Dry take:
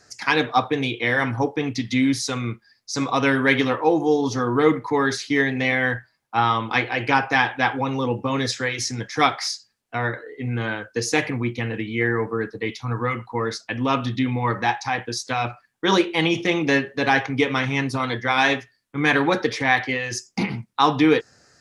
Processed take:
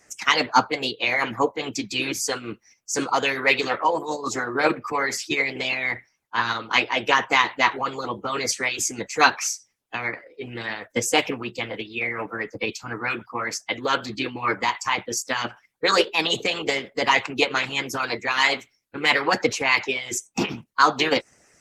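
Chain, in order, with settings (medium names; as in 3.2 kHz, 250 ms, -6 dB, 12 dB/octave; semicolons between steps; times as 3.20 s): formant shift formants +3 st; harmonic-percussive split harmonic -17 dB; trim +3 dB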